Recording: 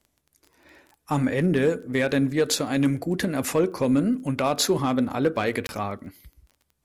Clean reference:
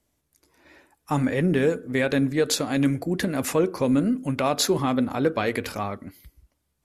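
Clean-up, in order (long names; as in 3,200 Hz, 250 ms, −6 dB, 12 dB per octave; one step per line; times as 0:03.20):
clipped peaks rebuilt −13 dBFS
click removal
repair the gap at 0:05.67, 21 ms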